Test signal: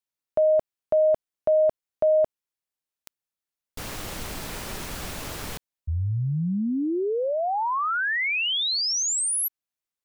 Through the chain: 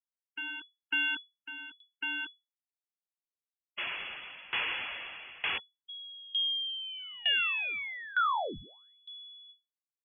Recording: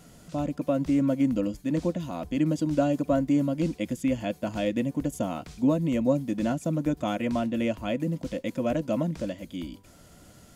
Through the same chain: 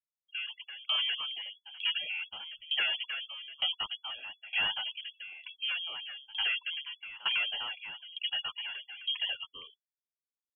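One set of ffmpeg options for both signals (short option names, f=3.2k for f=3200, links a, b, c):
-filter_complex "[0:a]lowshelf=f=420:t=q:w=1.5:g=-12,aeval=exprs='0.237*(cos(1*acos(clip(val(0)/0.237,-1,1)))-cos(1*PI/2))+0.0335*(cos(4*acos(clip(val(0)/0.237,-1,1)))-cos(4*PI/2))+0.106*(cos(5*acos(clip(val(0)/0.237,-1,1)))-cos(5*PI/2))+0.00266*(cos(6*acos(clip(val(0)/0.237,-1,1)))-cos(6*PI/2))':c=same,acrossover=split=170|830|1600[a][b][c][d];[a]alimiter=level_in=8.5dB:limit=-24dB:level=0:latency=1:release=38,volume=-8.5dB[e];[b]asoftclip=type=hard:threshold=-28.5dB[f];[c]aecho=1:1:88|176|264:0.0631|0.0297|0.0139[g];[d]flanger=delay=18.5:depth=2.6:speed=0.5[h];[e][f][g][h]amix=inputs=4:normalize=0,acrusher=bits=8:mix=0:aa=0.000001,acompressor=threshold=-28dB:ratio=4:attack=0.95:release=27:knee=6:detection=peak,agate=range=-33dB:threshold=-38dB:ratio=3:release=58:detection=peak,afftfilt=real='re*gte(hypot(re,im),0.0158)':imag='im*gte(hypot(re,im),0.0158)':win_size=1024:overlap=0.75,lowpass=f=2.9k:t=q:w=0.5098,lowpass=f=2.9k:t=q:w=0.6013,lowpass=f=2.9k:t=q:w=0.9,lowpass=f=2.9k:t=q:w=2.563,afreqshift=-3400,aeval=exprs='val(0)*pow(10,-22*if(lt(mod(1.1*n/s,1),2*abs(1.1)/1000),1-mod(1.1*n/s,1)/(2*abs(1.1)/1000),(mod(1.1*n/s,1)-2*abs(1.1)/1000)/(1-2*abs(1.1)/1000))/20)':c=same,volume=3.5dB"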